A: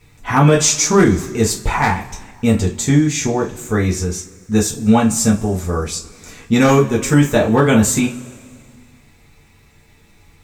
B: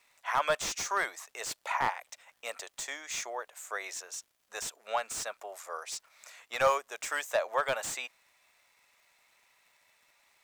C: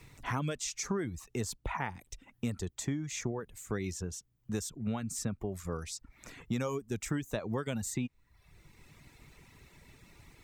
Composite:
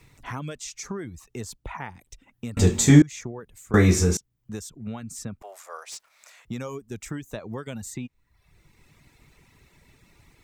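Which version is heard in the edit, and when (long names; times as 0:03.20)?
C
0:02.57–0:03.02: punch in from A
0:03.74–0:04.17: punch in from A
0:05.42–0:06.45: punch in from B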